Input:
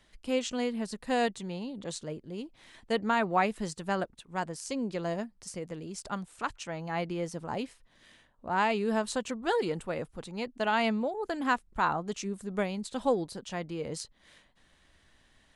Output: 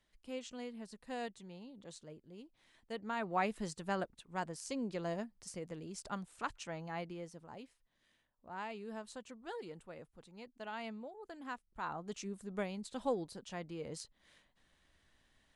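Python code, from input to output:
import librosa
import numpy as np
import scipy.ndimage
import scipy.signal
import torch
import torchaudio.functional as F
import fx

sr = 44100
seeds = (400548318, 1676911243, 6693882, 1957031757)

y = fx.gain(x, sr, db=fx.line((3.0, -14.0), (3.49, -6.0), (6.73, -6.0), (7.51, -16.5), (11.7, -16.5), (12.13, -8.0)))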